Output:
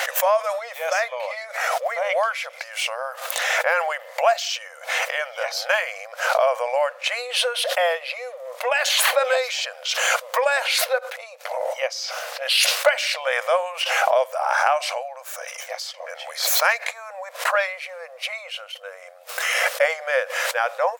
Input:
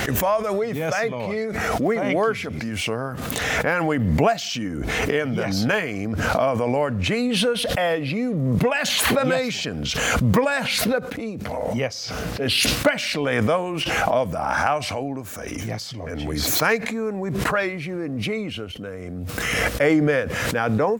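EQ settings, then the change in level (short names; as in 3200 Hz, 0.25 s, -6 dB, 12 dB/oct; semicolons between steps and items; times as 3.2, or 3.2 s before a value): brick-wall FIR high-pass 490 Hz; +2.0 dB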